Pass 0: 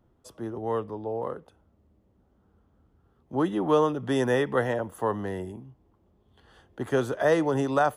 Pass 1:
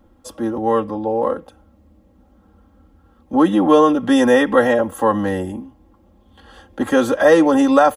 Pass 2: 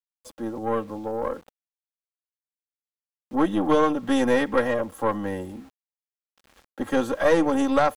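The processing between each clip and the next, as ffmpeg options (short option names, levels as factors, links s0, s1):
-filter_complex "[0:a]aecho=1:1:3.7:0.94,asplit=2[s0][s1];[s1]alimiter=limit=0.112:level=0:latency=1,volume=0.794[s2];[s0][s2]amix=inputs=2:normalize=0,volume=1.78"
-af "aeval=exprs='0.891*(cos(1*acos(clip(val(0)/0.891,-1,1)))-cos(1*PI/2))+0.112*(cos(4*acos(clip(val(0)/0.891,-1,1)))-cos(4*PI/2))+0.0224*(cos(7*acos(clip(val(0)/0.891,-1,1)))-cos(7*PI/2))':c=same,aeval=exprs='val(0)*gte(abs(val(0)),0.01)':c=same,volume=0.398"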